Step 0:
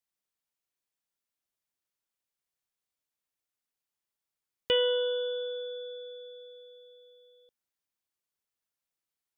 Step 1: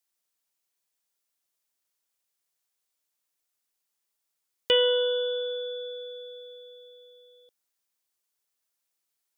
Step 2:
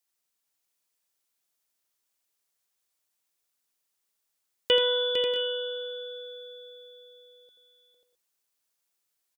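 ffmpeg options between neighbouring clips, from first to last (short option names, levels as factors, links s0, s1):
-af "bass=f=250:g=-7,treble=f=4000:g=5,volume=1.58"
-af "aecho=1:1:82|454|540|638|661:0.376|0.422|0.422|0.168|0.141"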